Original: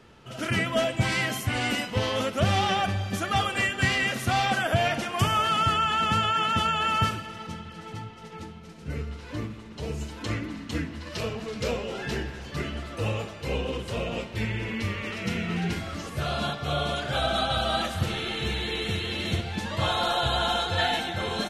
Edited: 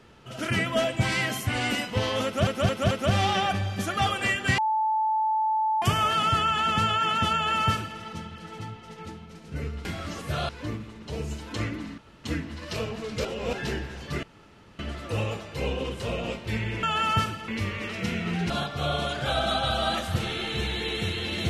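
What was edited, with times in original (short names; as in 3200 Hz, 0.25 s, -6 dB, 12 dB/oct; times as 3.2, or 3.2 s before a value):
2.25 stutter 0.22 s, 4 plays
3.92–5.16 bleep 873 Hz -21.5 dBFS
6.68–7.33 copy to 14.71
10.68 insert room tone 0.26 s
11.69–11.97 reverse
12.67 insert room tone 0.56 s
15.73–16.37 move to 9.19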